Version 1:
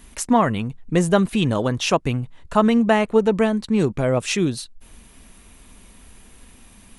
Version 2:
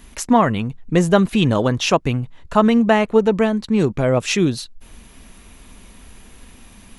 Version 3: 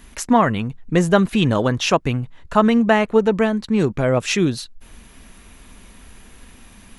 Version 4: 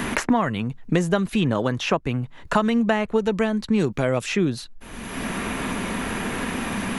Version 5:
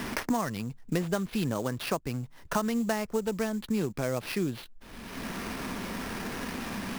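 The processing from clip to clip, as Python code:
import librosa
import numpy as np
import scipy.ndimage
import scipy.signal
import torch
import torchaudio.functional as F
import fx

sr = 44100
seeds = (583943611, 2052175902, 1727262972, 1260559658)

y1 = fx.peak_eq(x, sr, hz=9000.0, db=-8.0, octaves=0.32)
y1 = fx.rider(y1, sr, range_db=10, speed_s=2.0)
y1 = F.gain(torch.from_numpy(y1), 2.0).numpy()
y2 = fx.peak_eq(y1, sr, hz=1600.0, db=3.0, octaves=0.77)
y2 = F.gain(torch.from_numpy(y2), -1.0).numpy()
y3 = fx.band_squash(y2, sr, depth_pct=100)
y3 = F.gain(torch.from_numpy(y3), -4.5).numpy()
y4 = fx.sample_hold(y3, sr, seeds[0], rate_hz=7400.0, jitter_pct=20)
y4 = F.gain(torch.from_numpy(y4), -8.5).numpy()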